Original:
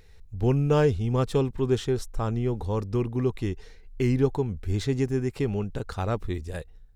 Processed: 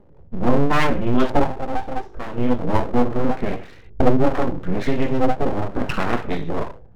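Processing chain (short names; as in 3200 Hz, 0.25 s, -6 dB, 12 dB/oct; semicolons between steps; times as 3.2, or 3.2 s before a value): Wiener smoothing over 9 samples; recorder AGC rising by 19 dB/s; 1.41–2.38 graphic EQ 125/250/500/1000/2000 Hz -9/-11/+5/-9/-11 dB; reverb RT60 0.35 s, pre-delay 3 ms, DRR -1 dB; LFO low-pass saw up 0.77 Hz 380–3900 Hz; full-wave rectifier; gain -3.5 dB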